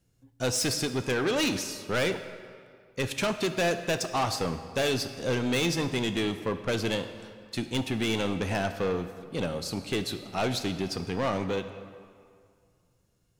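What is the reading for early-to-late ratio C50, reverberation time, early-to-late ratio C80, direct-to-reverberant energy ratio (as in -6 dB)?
10.5 dB, 2.1 s, 11.5 dB, 8.5 dB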